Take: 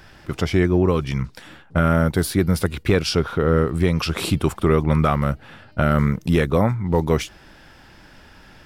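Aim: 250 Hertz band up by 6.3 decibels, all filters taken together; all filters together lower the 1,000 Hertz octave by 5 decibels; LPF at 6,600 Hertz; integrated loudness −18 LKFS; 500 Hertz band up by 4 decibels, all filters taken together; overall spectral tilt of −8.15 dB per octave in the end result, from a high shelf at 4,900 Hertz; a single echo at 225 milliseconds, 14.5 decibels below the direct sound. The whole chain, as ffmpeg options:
ffmpeg -i in.wav -af "lowpass=6600,equalizer=frequency=250:width_type=o:gain=8.5,equalizer=frequency=500:width_type=o:gain=3.5,equalizer=frequency=1000:width_type=o:gain=-8.5,highshelf=frequency=4900:gain=-4,aecho=1:1:225:0.188,volume=-1.5dB" out.wav

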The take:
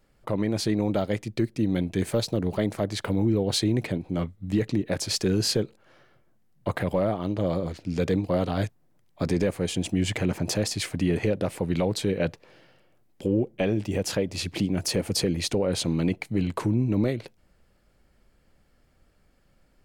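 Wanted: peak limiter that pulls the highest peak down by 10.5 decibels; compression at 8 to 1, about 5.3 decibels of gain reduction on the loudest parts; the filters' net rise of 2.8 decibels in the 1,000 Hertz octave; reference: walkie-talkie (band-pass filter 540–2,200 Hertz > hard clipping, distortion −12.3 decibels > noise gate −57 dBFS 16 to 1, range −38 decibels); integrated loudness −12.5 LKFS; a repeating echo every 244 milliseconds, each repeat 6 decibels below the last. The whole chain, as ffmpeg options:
ffmpeg -i in.wav -af "equalizer=frequency=1000:width_type=o:gain=5,acompressor=threshold=-24dB:ratio=8,alimiter=limit=-22.5dB:level=0:latency=1,highpass=540,lowpass=2200,aecho=1:1:244|488|732|976|1220|1464:0.501|0.251|0.125|0.0626|0.0313|0.0157,asoftclip=type=hard:threshold=-35dB,agate=range=-38dB:threshold=-57dB:ratio=16,volume=29dB" out.wav

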